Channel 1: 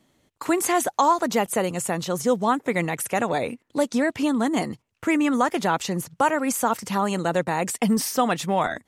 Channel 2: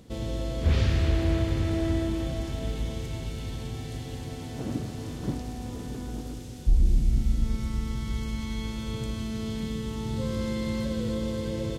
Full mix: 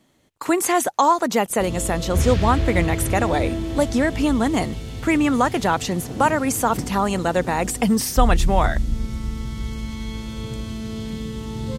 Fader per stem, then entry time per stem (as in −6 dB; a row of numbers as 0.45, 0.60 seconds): +2.5, +2.5 decibels; 0.00, 1.50 seconds